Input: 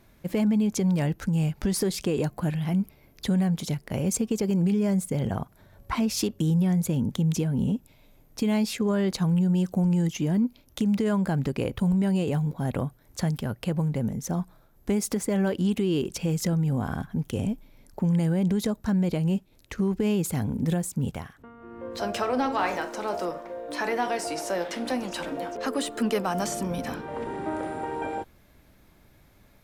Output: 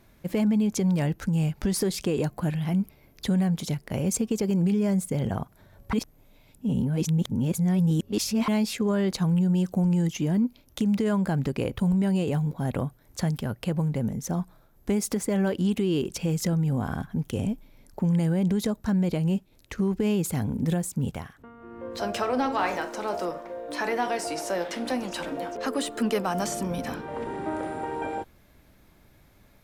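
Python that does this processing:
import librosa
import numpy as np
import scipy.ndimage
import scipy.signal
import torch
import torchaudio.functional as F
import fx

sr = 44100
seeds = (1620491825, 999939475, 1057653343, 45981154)

y = fx.edit(x, sr, fx.reverse_span(start_s=5.93, length_s=2.55), tone=tone)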